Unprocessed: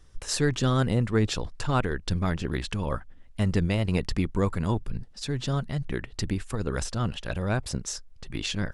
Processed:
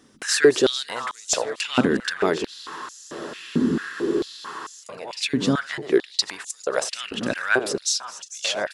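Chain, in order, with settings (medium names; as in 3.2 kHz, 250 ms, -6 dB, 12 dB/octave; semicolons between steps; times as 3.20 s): backward echo that repeats 223 ms, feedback 51%, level -13.5 dB; on a send: delay 1042 ms -15.5 dB; on the sum: saturation -14.5 dBFS, distortion -21 dB; spectral freeze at 2.50 s, 2.31 s; step-sequenced high-pass 4.5 Hz 240–6500 Hz; trim +6.5 dB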